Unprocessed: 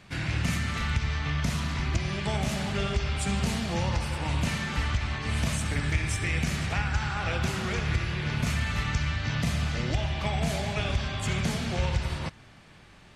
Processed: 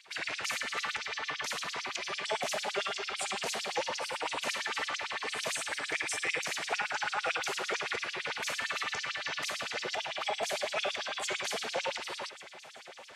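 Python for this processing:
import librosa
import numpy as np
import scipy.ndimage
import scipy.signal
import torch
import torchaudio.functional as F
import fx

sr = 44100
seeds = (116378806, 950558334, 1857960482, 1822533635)

y = fx.echo_heads(x, sr, ms=383, heads='first and third', feedback_pct=73, wet_db=-21.0)
y = fx.filter_lfo_highpass(y, sr, shape='sine', hz=8.9, low_hz=440.0, high_hz=5900.0, q=2.8)
y = y * 10.0 ** (-2.5 / 20.0)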